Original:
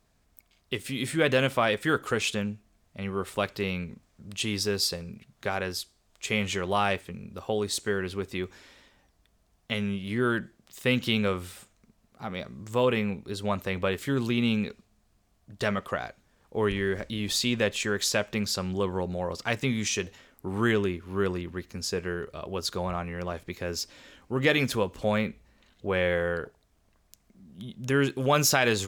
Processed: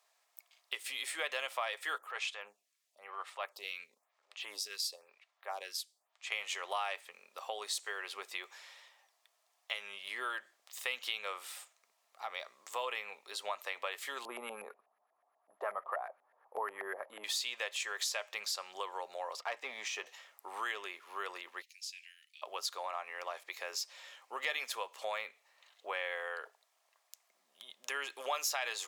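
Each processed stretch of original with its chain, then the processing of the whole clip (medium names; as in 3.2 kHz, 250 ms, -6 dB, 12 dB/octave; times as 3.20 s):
1.98–6.32 s: transient shaper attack -9 dB, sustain -4 dB + lamp-driven phase shifter 1 Hz
14.25–17.24 s: tilt shelf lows +6.5 dB, about 680 Hz + careless resampling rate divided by 4×, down none, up zero stuff + LFO low-pass saw up 8.2 Hz 670–1800 Hz
19.39–20.06 s: low-pass 1.1 kHz 6 dB/octave + waveshaping leveller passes 1
21.62–22.42 s: steep high-pass 2.3 kHz 48 dB/octave + treble shelf 3.1 kHz -7.5 dB + compression 1.5:1, threshold -46 dBFS
whole clip: high-pass 680 Hz 24 dB/octave; band-stop 1.5 kHz, Q 9.7; compression 2.5:1, threshold -37 dBFS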